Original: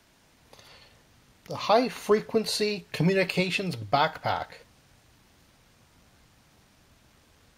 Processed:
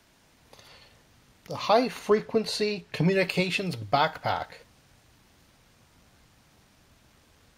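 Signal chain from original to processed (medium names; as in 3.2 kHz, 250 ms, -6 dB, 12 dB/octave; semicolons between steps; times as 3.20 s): 1.99–3.13 s: treble shelf 8.3 kHz -10 dB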